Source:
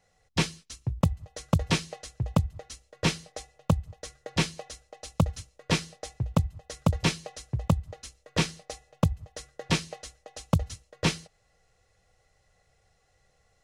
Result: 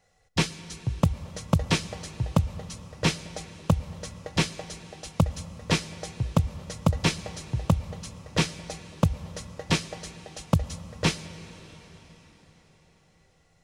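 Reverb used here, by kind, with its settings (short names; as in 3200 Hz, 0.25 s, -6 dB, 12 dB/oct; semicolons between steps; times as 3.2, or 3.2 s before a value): plate-style reverb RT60 5 s, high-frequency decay 0.9×, pre-delay 95 ms, DRR 14 dB; gain +1.5 dB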